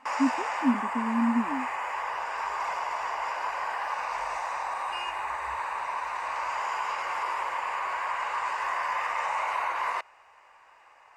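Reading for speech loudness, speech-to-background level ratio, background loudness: -29.0 LUFS, 2.0 dB, -31.0 LUFS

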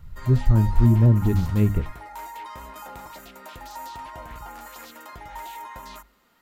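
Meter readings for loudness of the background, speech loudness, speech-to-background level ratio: -39.5 LUFS, -20.0 LUFS, 19.5 dB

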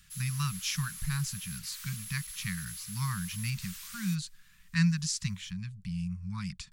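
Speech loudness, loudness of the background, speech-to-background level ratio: -34.5 LUFS, -41.5 LUFS, 7.0 dB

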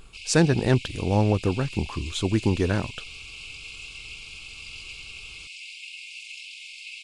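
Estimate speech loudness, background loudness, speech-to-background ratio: -24.5 LUFS, -38.5 LUFS, 14.0 dB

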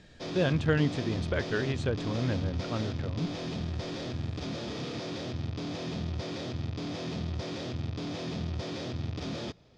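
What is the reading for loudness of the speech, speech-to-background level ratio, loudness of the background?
-32.0 LUFS, 4.0 dB, -36.0 LUFS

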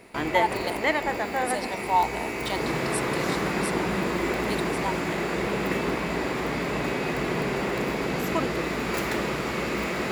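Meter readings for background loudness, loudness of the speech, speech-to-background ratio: -27.5 LUFS, -32.0 LUFS, -4.5 dB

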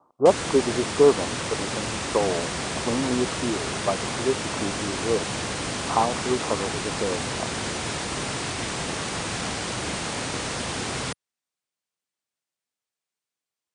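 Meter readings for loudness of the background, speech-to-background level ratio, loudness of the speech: -28.5 LUFS, 2.0 dB, -26.5 LUFS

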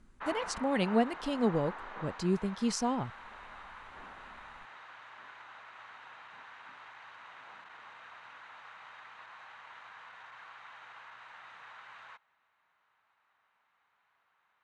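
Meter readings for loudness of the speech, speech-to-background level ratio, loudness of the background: -32.5 LUFS, 15.0 dB, -47.5 LUFS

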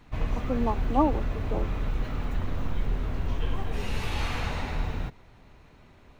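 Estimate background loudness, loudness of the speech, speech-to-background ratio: -32.5 LUFS, -30.0 LUFS, 2.5 dB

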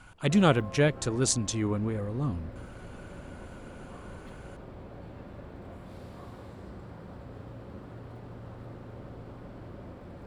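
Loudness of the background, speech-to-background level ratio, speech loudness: -45.5 LUFS, 18.0 dB, -27.5 LUFS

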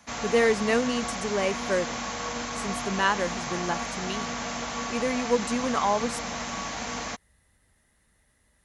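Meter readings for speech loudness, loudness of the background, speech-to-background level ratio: -28.0 LUFS, -32.0 LUFS, 4.0 dB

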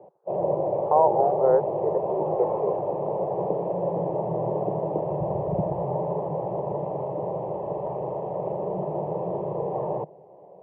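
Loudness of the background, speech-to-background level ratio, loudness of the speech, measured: -28.0 LUFS, 3.0 dB, -25.0 LUFS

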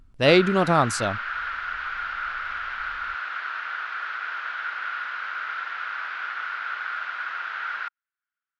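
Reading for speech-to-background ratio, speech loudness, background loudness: 9.5 dB, -20.5 LUFS, -30.0 LUFS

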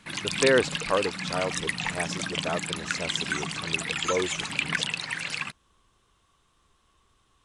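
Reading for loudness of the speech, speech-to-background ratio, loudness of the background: -30.5 LUFS, -1.0 dB, -29.5 LUFS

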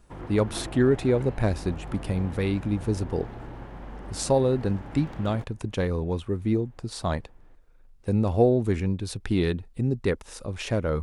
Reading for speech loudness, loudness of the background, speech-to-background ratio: -27.0 LUFS, -40.5 LUFS, 13.5 dB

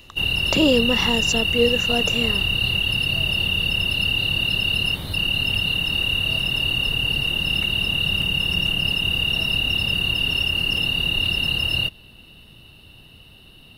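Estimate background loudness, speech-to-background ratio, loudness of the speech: -19.5 LUFS, -3.5 dB, -23.0 LUFS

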